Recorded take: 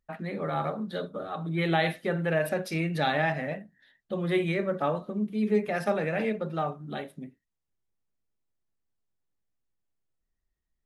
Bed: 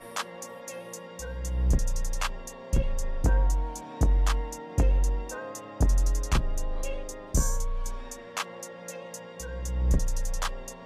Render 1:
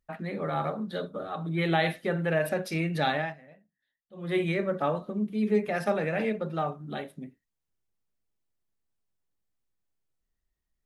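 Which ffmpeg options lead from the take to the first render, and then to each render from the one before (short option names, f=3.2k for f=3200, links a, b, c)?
-filter_complex "[0:a]asplit=3[a][b][c];[a]atrim=end=3.37,asetpts=PTS-STARTPTS,afade=t=out:st=3.1:d=0.27:silence=0.0944061[d];[b]atrim=start=3.37:end=4.13,asetpts=PTS-STARTPTS,volume=-20.5dB[e];[c]atrim=start=4.13,asetpts=PTS-STARTPTS,afade=t=in:d=0.27:silence=0.0944061[f];[d][e][f]concat=n=3:v=0:a=1"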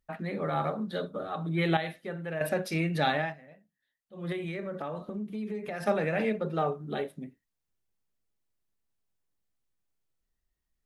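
-filter_complex "[0:a]asettb=1/sr,asplit=3[a][b][c];[a]atrim=end=4.324[d];[b]atrim=start=4.32:end=5.83,asetpts=PTS-STARTPTS,afade=t=in:d=0.004:c=qsin,afade=t=out:st=1.506:d=0.004:c=qsin,acompressor=threshold=-32dB:ratio=6:attack=3.2:release=140:knee=1:detection=peak[e];[c]atrim=start=5.826[f];[d][e]acrossfade=d=0.004:c1=hsin:c2=qsin[g];[g][f]acrossfade=d=0.004:c1=qsin:c2=hsin,asettb=1/sr,asplit=3[h][i][j];[h]atrim=end=6.444[k];[i]atrim=start=6.44:end=7.09,asetpts=PTS-STARTPTS,afade=t=in:d=0.004:c=qsin,afade=t=out:st=0.646:d=0.004:c=qsin,equalizer=f=430:w=4.7:g=10[l];[j]atrim=start=7.086[m];[k][l]acrossfade=d=0.004:c1=hsin:c2=qsin[n];[n][m]acrossfade=d=0.004:c1=qsin:c2=hsin,asplit=3[o][p][q];[o]atrim=end=1.772[r];[p]atrim=start=1.768:end=2.412,asetpts=PTS-STARTPTS,volume=-8.5dB[s];[q]atrim=start=2.408[t];[r][s]acrossfade=d=0.004:c1=hsin:c2=hsin[u];[u][t]acrossfade=d=0.004:c1=hsin:c2=hsin"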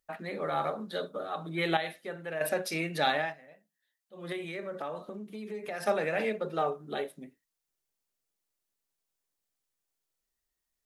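-af "bass=f=250:g=-11,treble=f=4k:g=5"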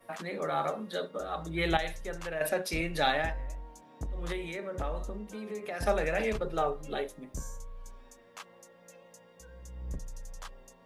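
-filter_complex "[1:a]volume=-14.5dB[a];[0:a][a]amix=inputs=2:normalize=0"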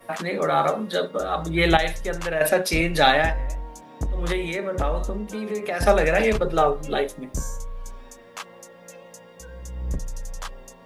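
-af "volume=10.5dB,alimiter=limit=-2dB:level=0:latency=1"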